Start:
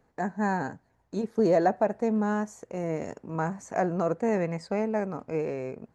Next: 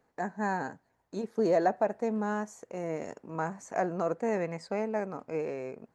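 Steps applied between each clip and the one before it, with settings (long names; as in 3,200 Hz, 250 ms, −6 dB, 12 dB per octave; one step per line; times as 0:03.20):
low-shelf EQ 160 Hz −11 dB
level −2 dB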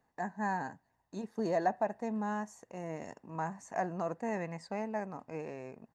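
comb filter 1.1 ms, depth 43%
level −4.5 dB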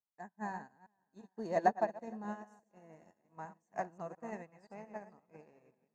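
delay that plays each chunk backwards 173 ms, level −6.5 dB
feedback echo with a long and a short gap by turns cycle 774 ms, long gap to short 1.5 to 1, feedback 42%, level −16.5 dB
expander for the loud parts 2.5 to 1, over −48 dBFS
level +3 dB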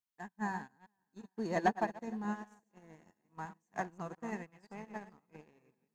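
parametric band 610 Hz −10.5 dB 0.65 octaves
leveller curve on the samples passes 1
level +2 dB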